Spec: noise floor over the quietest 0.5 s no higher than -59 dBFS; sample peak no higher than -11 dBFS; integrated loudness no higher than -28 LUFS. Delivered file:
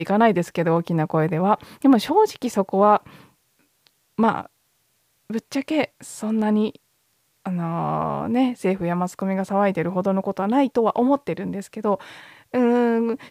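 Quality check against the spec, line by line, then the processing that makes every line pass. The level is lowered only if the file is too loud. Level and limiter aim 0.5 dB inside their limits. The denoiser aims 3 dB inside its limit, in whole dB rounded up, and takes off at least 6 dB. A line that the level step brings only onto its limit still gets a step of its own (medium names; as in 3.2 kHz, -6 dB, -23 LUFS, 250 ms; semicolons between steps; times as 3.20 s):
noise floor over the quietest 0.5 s -67 dBFS: pass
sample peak -5.0 dBFS: fail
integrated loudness -22.0 LUFS: fail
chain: trim -6.5 dB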